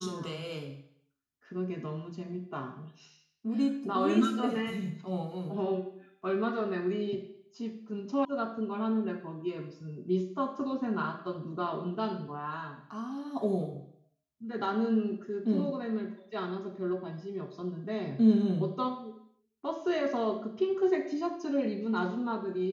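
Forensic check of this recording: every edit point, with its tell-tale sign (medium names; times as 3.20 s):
8.25 s: sound stops dead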